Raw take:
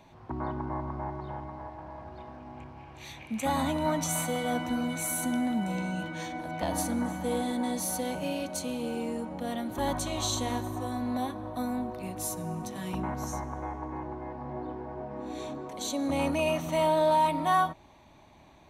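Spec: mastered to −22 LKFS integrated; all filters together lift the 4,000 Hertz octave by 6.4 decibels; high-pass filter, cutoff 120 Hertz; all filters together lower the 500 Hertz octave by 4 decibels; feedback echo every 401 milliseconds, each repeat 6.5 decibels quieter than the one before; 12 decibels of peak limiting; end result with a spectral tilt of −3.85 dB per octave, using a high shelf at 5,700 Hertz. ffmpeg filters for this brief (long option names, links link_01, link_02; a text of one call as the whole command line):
ffmpeg -i in.wav -af "highpass=120,equalizer=frequency=500:width_type=o:gain=-5.5,equalizer=frequency=4000:width_type=o:gain=5,highshelf=frequency=5700:gain=8,alimiter=limit=-24dB:level=0:latency=1,aecho=1:1:401|802|1203|1604|2005|2406:0.473|0.222|0.105|0.0491|0.0231|0.0109,volume=11.5dB" out.wav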